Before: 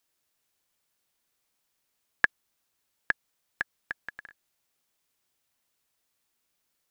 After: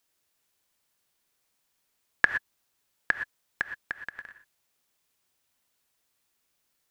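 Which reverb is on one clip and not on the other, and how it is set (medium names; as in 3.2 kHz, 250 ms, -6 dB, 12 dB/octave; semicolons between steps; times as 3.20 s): gated-style reverb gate 140 ms rising, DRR 8.5 dB; trim +1.5 dB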